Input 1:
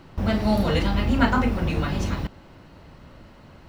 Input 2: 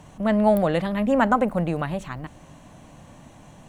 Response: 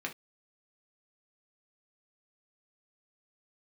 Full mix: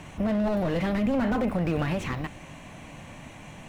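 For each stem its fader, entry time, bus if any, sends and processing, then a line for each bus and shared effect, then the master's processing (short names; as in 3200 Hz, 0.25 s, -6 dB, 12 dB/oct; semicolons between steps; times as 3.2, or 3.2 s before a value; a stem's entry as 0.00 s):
-4.0 dB, 0.00 s, send -13 dB, notch 4500 Hz, Q 6.9; auto duck -10 dB, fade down 0.20 s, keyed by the second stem
+2.0 dB, 0.00 s, no send, bell 2300 Hz +11 dB 0.76 oct; slew limiter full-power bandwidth 44 Hz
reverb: on, pre-delay 3 ms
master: limiter -17.5 dBFS, peak gain reduction 8.5 dB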